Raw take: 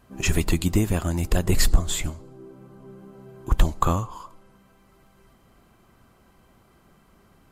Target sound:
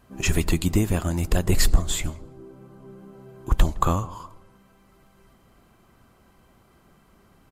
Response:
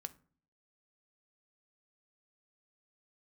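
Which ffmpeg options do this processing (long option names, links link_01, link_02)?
-filter_complex "[0:a]asplit=2[link_01][link_02];[link_02]adelay=163,lowpass=frequency=950:poles=1,volume=-18.5dB,asplit=2[link_03][link_04];[link_04]adelay=163,lowpass=frequency=950:poles=1,volume=0.39,asplit=2[link_05][link_06];[link_06]adelay=163,lowpass=frequency=950:poles=1,volume=0.39[link_07];[link_01][link_03][link_05][link_07]amix=inputs=4:normalize=0"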